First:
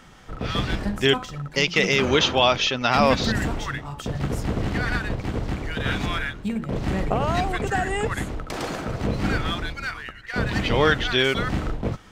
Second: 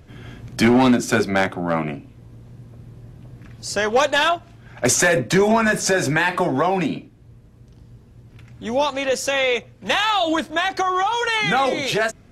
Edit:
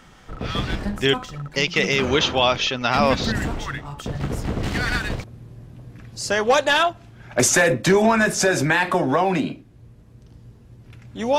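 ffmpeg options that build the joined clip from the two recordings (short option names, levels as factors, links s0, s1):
-filter_complex "[0:a]asettb=1/sr,asplit=3[s0][s1][s2];[s0]atrim=end=4.634[s3];[s1]atrim=start=4.63:end=5.24,asetpts=PTS-STARTPTS,afade=t=in:d=0.004:c=qsin,afade=t=out:st=0.606:d=0.004:c=qsin,highshelf=f=2400:g=9.5[s4];[s2]atrim=start=5.236[s5];[s3][s4]acrossfade=d=0.004:c1=hsin:c2=qsin[s6];[s6][s5]acrossfade=d=0.004:c1=qsin:c2=hsin,apad=whole_dur=11.38,atrim=end=11.38,atrim=end=5.242[s7];[1:a]atrim=start=2.698:end=8.84[s8];[s7][s8]acrossfade=d=0.004:c1=hsin:c2=hsin"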